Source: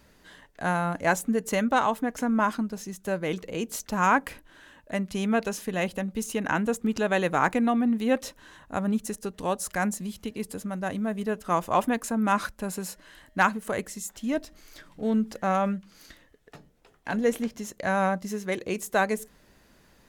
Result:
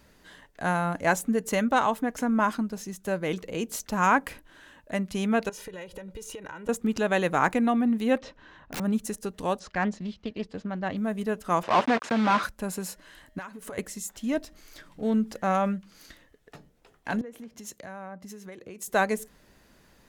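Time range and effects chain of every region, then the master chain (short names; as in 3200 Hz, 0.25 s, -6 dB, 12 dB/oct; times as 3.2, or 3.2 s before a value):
5.49–6.69 high shelf 6500 Hz -7 dB + comb 2.1 ms, depth 92% + compressor 12:1, threshold -36 dBFS
8.18–8.8 Gaussian blur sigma 2 samples + wrapped overs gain 28.5 dB
9.59–10.97 gate -41 dBFS, range -7 dB + LPF 4800 Hz 24 dB/oct + Doppler distortion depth 0.3 ms
11.63–12.43 block floating point 3-bit + overdrive pedal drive 17 dB, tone 1600 Hz, clips at -12 dBFS + BPF 100–5100 Hz
13.38–13.78 compressor 10:1, threshold -35 dBFS + comb 7.2 ms, depth 41%
17.21–18.88 HPF 47 Hz + compressor 12:1, threshold -37 dBFS + three-band expander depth 100%
whole clip: dry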